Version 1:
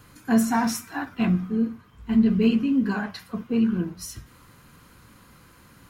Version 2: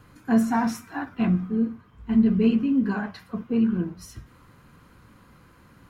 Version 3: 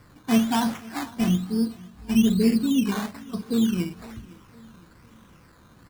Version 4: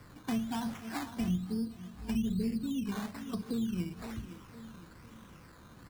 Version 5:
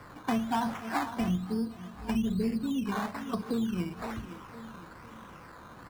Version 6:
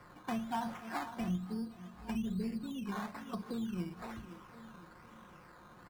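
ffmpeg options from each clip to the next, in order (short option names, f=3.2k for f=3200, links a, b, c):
-af "highshelf=f=3.1k:g=-10.5"
-af "acrusher=samples=13:mix=1:aa=0.000001:lfo=1:lforange=7.8:lforate=1.1,aecho=1:1:508|1016|1524:0.0794|0.0389|0.0191"
-filter_complex "[0:a]acrossover=split=130[a][b];[b]acompressor=threshold=-33dB:ratio=10[c];[a][c]amix=inputs=2:normalize=0,volume=-1dB"
-af "equalizer=f=930:t=o:w=2.6:g=11"
-af "aecho=1:1:5.6:0.34,volume=-8dB"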